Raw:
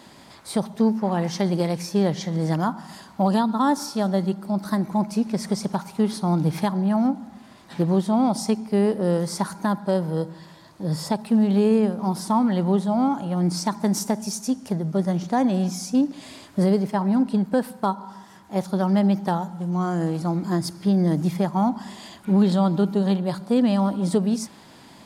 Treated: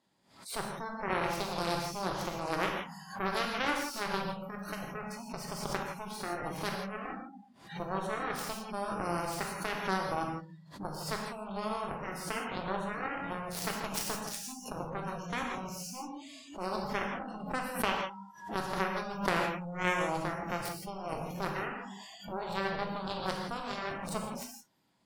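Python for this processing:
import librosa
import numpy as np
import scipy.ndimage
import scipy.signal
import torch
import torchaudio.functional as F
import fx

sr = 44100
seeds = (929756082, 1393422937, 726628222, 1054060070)

p1 = fx.over_compress(x, sr, threshold_db=-25.0, ratio=-0.5)
p2 = x + F.gain(torch.from_numpy(p1), -1.0).numpy()
p3 = fx.dynamic_eq(p2, sr, hz=220.0, q=1.6, threshold_db=-32.0, ratio=4.0, max_db=-4)
p4 = fx.cheby_harmonics(p3, sr, harmonics=(3, 7), levels_db=(-8, -39), full_scale_db=-7.5)
p5 = fx.rev_gated(p4, sr, seeds[0], gate_ms=190, shape='flat', drr_db=0.0)
p6 = fx.noise_reduce_blind(p5, sr, reduce_db=21)
p7 = fx.pre_swell(p6, sr, db_per_s=110.0)
y = F.gain(torch.from_numpy(p7), -5.0).numpy()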